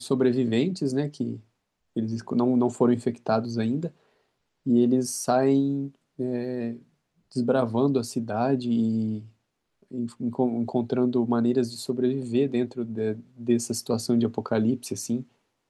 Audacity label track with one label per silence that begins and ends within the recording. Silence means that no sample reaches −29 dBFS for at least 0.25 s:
1.340000	1.960000	silence
3.870000	4.670000	silence
5.860000	6.200000	silence
6.730000	7.360000	silence
9.170000	9.940000	silence
13.130000	13.480000	silence